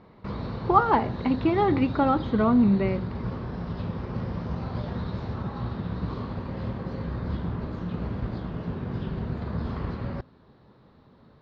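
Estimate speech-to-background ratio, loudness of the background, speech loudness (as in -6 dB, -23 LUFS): 9.5 dB, -33.0 LUFS, -23.5 LUFS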